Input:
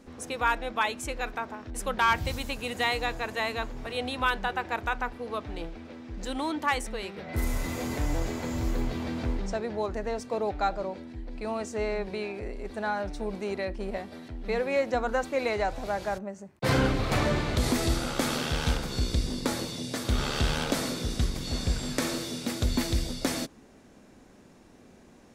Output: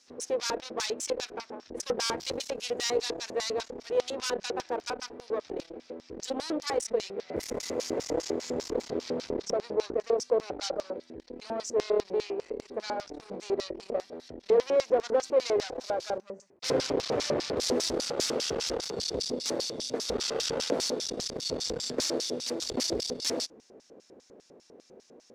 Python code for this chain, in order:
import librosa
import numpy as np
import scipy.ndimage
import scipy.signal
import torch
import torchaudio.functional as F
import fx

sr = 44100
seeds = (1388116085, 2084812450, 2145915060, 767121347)

y = fx.cheby_harmonics(x, sr, harmonics=(5, 8), levels_db=(-16, -12), full_scale_db=-14.5)
y = fx.filter_lfo_bandpass(y, sr, shape='square', hz=5.0, low_hz=460.0, high_hz=5400.0, q=3.1)
y = y * librosa.db_to_amplitude(5.0)